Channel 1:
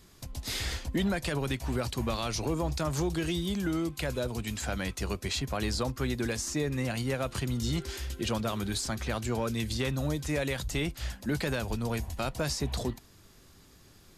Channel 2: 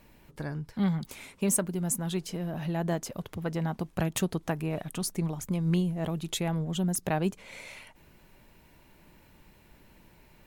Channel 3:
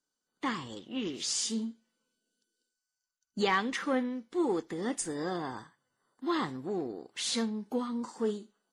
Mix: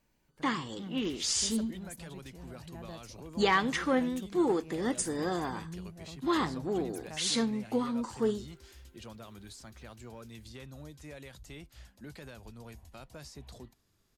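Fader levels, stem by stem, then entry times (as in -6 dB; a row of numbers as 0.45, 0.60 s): -16.5, -17.0, +2.0 dB; 0.75, 0.00, 0.00 s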